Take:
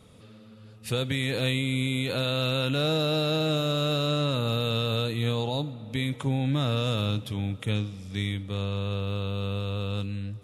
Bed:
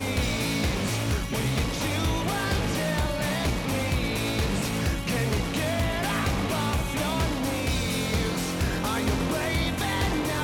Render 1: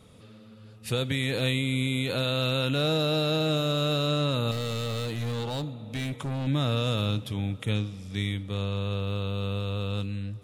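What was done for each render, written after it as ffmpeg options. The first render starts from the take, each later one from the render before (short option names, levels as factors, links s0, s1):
-filter_complex "[0:a]asettb=1/sr,asplit=3[s0][s1][s2];[s0]atrim=end=4.514[s3];[s1]atrim=start=4.51:end=6.47,asetpts=PTS-STARTPTS,afade=t=in:d=0.004:c=qsin,afade=t=out:st=1.956:d=0.004:c=qsin,asoftclip=type=hard:threshold=0.0398[s4];[s2]atrim=start=6.466[s5];[s3][s4]acrossfade=d=0.004:c1=hsin:c2=qsin[s6];[s6][s5]acrossfade=d=0.004:c1=qsin:c2=hsin"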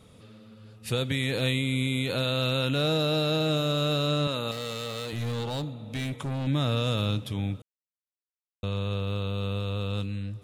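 -filter_complex "[0:a]asettb=1/sr,asplit=3[s0][s1][s2];[s0]atrim=end=4.274[s3];[s1]atrim=start=4.27:end=5.13,asetpts=PTS-STARTPTS,afade=t=in:d=0.004:c=qsin,afade=t=out:st=0.856:d=0.004:c=qsin,highpass=f=320:p=1[s4];[s2]atrim=start=5.126[s5];[s3][s4]acrossfade=d=0.004:c1=hsin:c2=qsin[s6];[s6][s5]acrossfade=d=0.004:c1=qsin:c2=hsin,asplit=3[s7][s8][s9];[s7]atrim=end=7.62,asetpts=PTS-STARTPTS,afade=t=out:st=7.616:d=0.004:c=hsin[s10];[s8]atrim=start=7.62:end=8.63,asetpts=PTS-STARTPTS,volume=0[s11];[s9]atrim=start=8.63,asetpts=PTS-STARTPTS,afade=t=in:d=0.004:c=hsin[s12];[s10][s11][s12]concat=n=3:v=0:a=1"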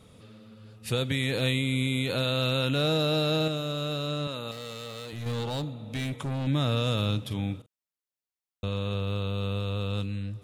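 -filter_complex "[0:a]asettb=1/sr,asplit=3[s0][s1][s2];[s0]atrim=end=7.264[s3];[s1]atrim=start=7.26:end=8.94,asetpts=PTS-STARTPTS,afade=t=in:d=0.004:c=qsin,afade=t=out:st=1.676:d=0.004:c=qsin,asplit=2[s4][s5];[s5]adelay=44,volume=0.266[s6];[s4][s6]amix=inputs=2:normalize=0,atrim=end_sample=74088[s7];[s2]atrim=start=8.936[s8];[s3][s7]acrossfade=d=0.004:c1=hsin:c2=qsin[s9];[s9][s8]acrossfade=d=0.004:c1=qsin:c2=hsin,asplit=3[s10][s11][s12];[s10]atrim=end=3.482[s13];[s11]atrim=start=3.478:end=5.262,asetpts=PTS-STARTPTS,volume=0.562[s14];[s12]atrim=start=5.258[s15];[s13][s14]acrossfade=d=0.004:c1=hsin:c2=hsin[s16];[s16][s15]acrossfade=d=0.004:c1=hsin:c2=hsin"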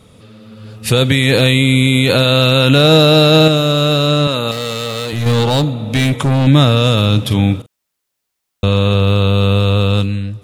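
-af "dynaudnorm=f=170:g=7:m=2.82,alimiter=level_in=2.82:limit=0.891:release=50:level=0:latency=1"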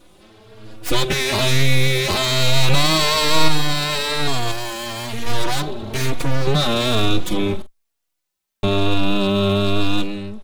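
-filter_complex "[0:a]aeval=exprs='abs(val(0))':c=same,asplit=2[s0][s1];[s1]adelay=3.6,afreqshift=1.1[s2];[s0][s2]amix=inputs=2:normalize=1"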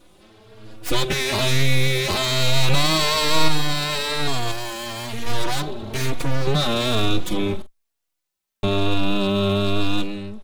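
-af "volume=0.75"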